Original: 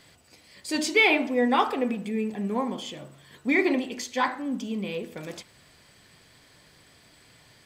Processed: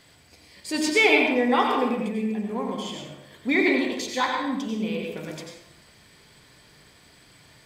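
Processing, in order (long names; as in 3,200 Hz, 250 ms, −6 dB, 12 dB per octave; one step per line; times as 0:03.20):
0:02.05–0:02.69: downward compressor 1.5 to 1, threshold −32 dBFS, peak gain reduction 4 dB
0:03.51–0:04.65: parametric band 3,800 Hz +11.5 dB 0.21 octaves
convolution reverb RT60 0.80 s, pre-delay 84 ms, DRR 1.5 dB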